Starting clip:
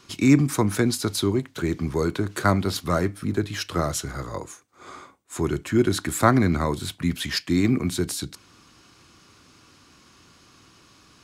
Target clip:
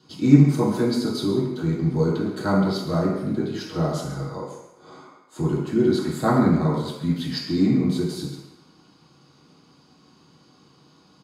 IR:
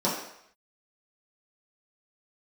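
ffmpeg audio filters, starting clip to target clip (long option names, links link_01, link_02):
-filter_complex "[0:a]aecho=1:1:136:0.211[link_01];[1:a]atrim=start_sample=2205,asetrate=37044,aresample=44100[link_02];[link_01][link_02]afir=irnorm=-1:irlink=0,volume=-16dB"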